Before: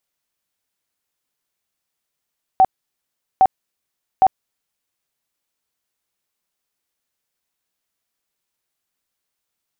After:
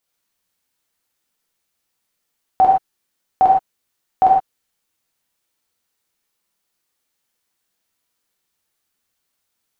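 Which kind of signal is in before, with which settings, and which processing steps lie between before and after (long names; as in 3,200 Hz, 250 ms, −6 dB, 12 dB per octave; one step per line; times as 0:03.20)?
tone bursts 761 Hz, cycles 36, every 0.81 s, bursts 3, −7.5 dBFS
reverb whose tail is shaped and stops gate 140 ms flat, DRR −3 dB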